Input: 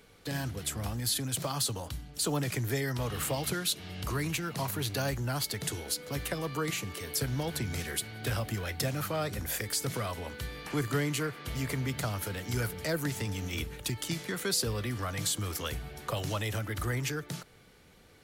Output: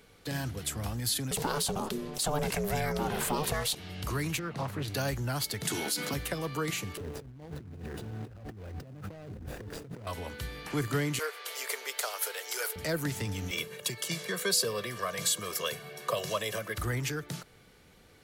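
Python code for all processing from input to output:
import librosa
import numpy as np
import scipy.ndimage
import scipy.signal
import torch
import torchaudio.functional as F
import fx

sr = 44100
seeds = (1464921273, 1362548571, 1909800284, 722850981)

y = fx.chain(x, sr, fx.peak_eq(hz=620.0, db=5.0, octaves=1.7),
    fx.ring_mod(carrier_hz=300.0),
    fx.env_flatten(amount_pct=50), at=(1.31, 3.75))
y = fx.chain(y, sr, fx.lowpass(hz=2100.0, slope=6),
    fx.hum_notches(base_hz=60, count=3),
    fx.doppler_dist(depth_ms=0.36), at=(4.39, 4.88))
y = fx.chain(y, sr, fx.highpass(hz=150.0, slope=24),
    fx.peak_eq(hz=500.0, db=-9.5, octaves=0.41),
    fx.env_flatten(amount_pct=70), at=(5.65, 6.14))
y = fx.chain(y, sr, fx.median_filter(points=41),
    fx.over_compress(threshold_db=-43.0, ratio=-1.0), at=(6.97, 10.07))
y = fx.chain(y, sr, fx.ellip_highpass(hz=430.0, order=4, stop_db=60),
    fx.high_shelf(hz=2900.0, db=8.0), at=(11.19, 12.76))
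y = fx.chain(y, sr, fx.highpass(hz=170.0, slope=24),
    fx.comb(ms=1.8, depth=0.92), at=(13.51, 16.78))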